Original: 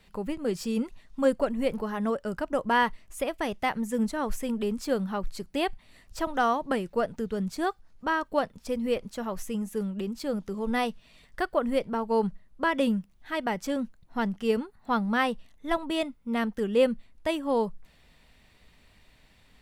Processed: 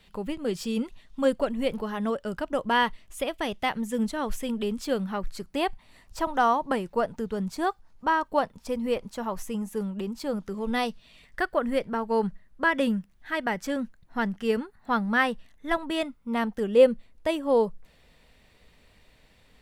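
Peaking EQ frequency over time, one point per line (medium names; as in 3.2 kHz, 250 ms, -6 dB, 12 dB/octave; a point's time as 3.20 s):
peaking EQ +6 dB 0.56 oct
4.86 s 3.3 kHz
5.65 s 930 Hz
10.32 s 930 Hz
10.89 s 5.3 kHz
11.41 s 1.7 kHz
15.95 s 1.7 kHz
16.86 s 490 Hz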